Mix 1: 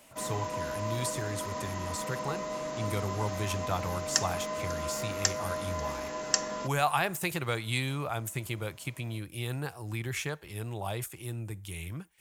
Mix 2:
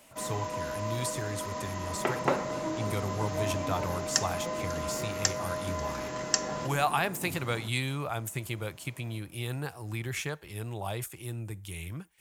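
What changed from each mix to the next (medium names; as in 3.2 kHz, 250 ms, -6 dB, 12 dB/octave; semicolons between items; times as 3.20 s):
second sound: unmuted; reverb: on, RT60 0.75 s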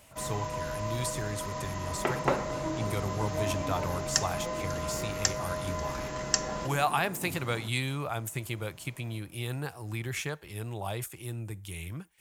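first sound: add resonant low shelf 150 Hz +12.5 dB, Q 1.5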